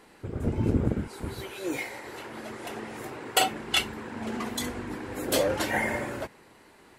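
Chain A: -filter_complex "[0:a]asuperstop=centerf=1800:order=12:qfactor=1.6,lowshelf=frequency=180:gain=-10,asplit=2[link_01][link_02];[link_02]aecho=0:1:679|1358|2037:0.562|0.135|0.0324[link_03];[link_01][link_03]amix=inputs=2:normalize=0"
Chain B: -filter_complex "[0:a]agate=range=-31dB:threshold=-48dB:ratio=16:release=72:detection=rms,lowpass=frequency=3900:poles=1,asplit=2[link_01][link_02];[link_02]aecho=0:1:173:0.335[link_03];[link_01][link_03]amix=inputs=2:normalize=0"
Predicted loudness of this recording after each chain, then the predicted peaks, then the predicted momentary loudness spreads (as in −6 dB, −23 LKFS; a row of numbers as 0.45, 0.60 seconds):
−31.5, −30.5 LKFS; −9.0, −9.0 dBFS; 13, 13 LU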